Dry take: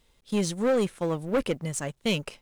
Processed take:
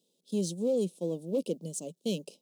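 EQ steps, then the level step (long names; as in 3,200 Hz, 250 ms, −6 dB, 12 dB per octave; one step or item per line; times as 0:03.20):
elliptic high-pass filter 170 Hz
Butterworth band-reject 1,700 Hz, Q 0.58
flat-topped bell 1,200 Hz −10.5 dB
−3.5 dB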